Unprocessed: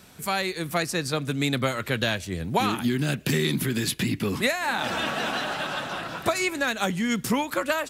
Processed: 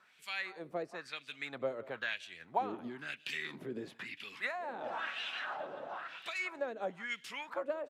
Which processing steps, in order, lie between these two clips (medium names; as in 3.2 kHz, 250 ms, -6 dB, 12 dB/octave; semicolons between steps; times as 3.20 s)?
delay 178 ms -19.5 dB; LFO band-pass sine 1 Hz 460–3000 Hz; trim -5 dB